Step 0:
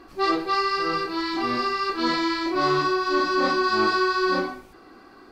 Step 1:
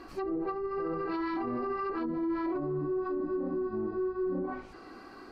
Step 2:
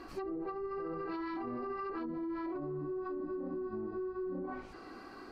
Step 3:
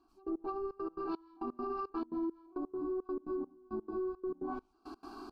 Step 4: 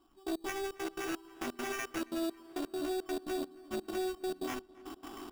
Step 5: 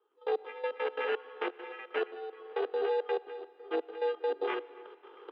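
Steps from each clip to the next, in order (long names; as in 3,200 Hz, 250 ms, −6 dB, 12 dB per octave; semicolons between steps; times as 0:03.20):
notch filter 3,500 Hz, Q 13; treble cut that deepens with the level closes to 310 Hz, closed at −19 dBFS; brickwall limiter −26 dBFS, peak gain reduction 10.5 dB
downward compressor, threshold −35 dBFS, peak gain reduction 6.5 dB; level −1 dB
phaser with its sweep stopped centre 520 Hz, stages 6; gate pattern "...x.xxx.x.xx" 170 BPM −24 dB; level +4 dB
phase distortion by the signal itself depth 0.42 ms; sample-rate reduction 4,200 Hz, jitter 0%; feedback echo with a low-pass in the loop 275 ms, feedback 75%, low-pass 3,200 Hz, level −22 dB; level +2 dB
gate pattern ".x.xxxx." 71 BPM −12 dB; comb and all-pass reverb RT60 2.5 s, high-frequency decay 0.95×, pre-delay 45 ms, DRR 19.5 dB; single-sideband voice off tune +110 Hz 160–3,100 Hz; level +5.5 dB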